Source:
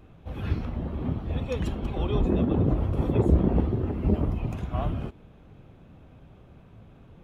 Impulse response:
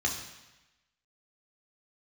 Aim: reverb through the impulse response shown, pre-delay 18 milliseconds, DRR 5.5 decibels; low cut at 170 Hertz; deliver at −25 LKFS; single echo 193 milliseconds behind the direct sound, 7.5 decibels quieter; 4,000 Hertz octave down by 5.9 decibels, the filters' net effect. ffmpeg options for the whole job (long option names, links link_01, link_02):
-filter_complex "[0:a]highpass=170,equalizer=frequency=4000:width_type=o:gain=-8,aecho=1:1:193:0.422,asplit=2[link_01][link_02];[1:a]atrim=start_sample=2205,adelay=18[link_03];[link_02][link_03]afir=irnorm=-1:irlink=0,volume=-13dB[link_04];[link_01][link_04]amix=inputs=2:normalize=0,volume=3.5dB"